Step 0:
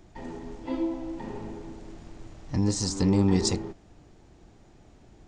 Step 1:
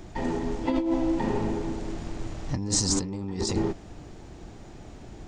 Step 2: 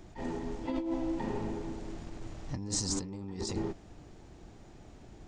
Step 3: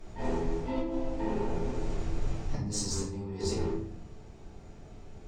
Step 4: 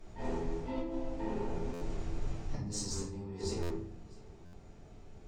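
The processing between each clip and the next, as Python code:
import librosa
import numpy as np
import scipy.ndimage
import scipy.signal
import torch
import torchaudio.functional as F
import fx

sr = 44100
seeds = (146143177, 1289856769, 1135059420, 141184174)

y1 = fx.over_compress(x, sr, threshold_db=-32.0, ratio=-1.0)
y1 = y1 * librosa.db_to_amplitude(5.5)
y2 = fx.attack_slew(y1, sr, db_per_s=230.0)
y2 = y2 * librosa.db_to_amplitude(-8.0)
y3 = fx.rider(y2, sr, range_db=4, speed_s=0.5)
y3 = fx.cheby_harmonics(y3, sr, harmonics=(7,), levels_db=(-34,), full_scale_db=-21.0)
y3 = fx.room_shoebox(y3, sr, seeds[0], volume_m3=72.0, walls='mixed', distance_m=1.6)
y3 = y3 * librosa.db_to_amplitude(-4.5)
y4 = y3 + 10.0 ** (-23.0 / 20.0) * np.pad(y3, (int(656 * sr / 1000.0), 0))[:len(y3)]
y4 = fx.buffer_glitch(y4, sr, at_s=(1.73, 3.62, 4.45), block=512, repeats=6)
y4 = y4 * librosa.db_to_amplitude(-5.0)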